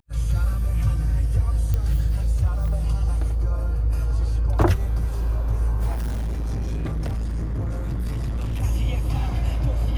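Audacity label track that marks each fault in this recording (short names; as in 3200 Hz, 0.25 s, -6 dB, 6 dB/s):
1.740000	1.740000	pop -13 dBFS
5.920000	8.640000	clipped -22.5 dBFS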